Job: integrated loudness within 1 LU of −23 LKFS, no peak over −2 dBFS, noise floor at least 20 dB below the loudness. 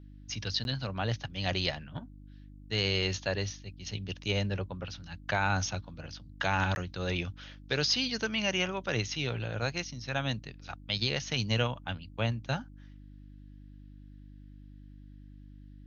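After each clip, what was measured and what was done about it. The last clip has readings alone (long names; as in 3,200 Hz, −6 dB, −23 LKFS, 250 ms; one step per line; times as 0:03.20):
number of dropouts 2; longest dropout 11 ms; mains hum 50 Hz; hum harmonics up to 300 Hz; level of the hum −49 dBFS; integrated loudness −32.5 LKFS; sample peak −14.0 dBFS; target loudness −23.0 LKFS
→ repair the gap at 0:00.64/0:06.75, 11 ms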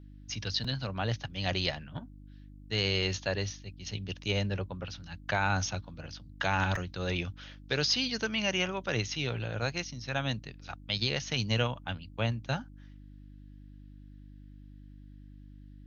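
number of dropouts 0; mains hum 50 Hz; hum harmonics up to 300 Hz; level of the hum −49 dBFS
→ hum removal 50 Hz, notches 6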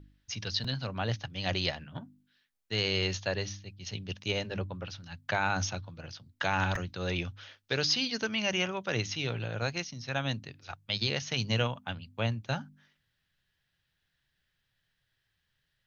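mains hum none found; integrated loudness −32.5 LKFS; sample peak −14.0 dBFS; target loudness −23.0 LKFS
→ level +9.5 dB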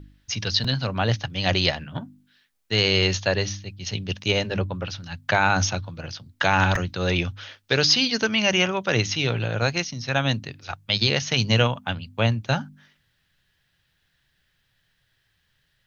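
integrated loudness −23.0 LKFS; sample peak −4.5 dBFS; background noise floor −70 dBFS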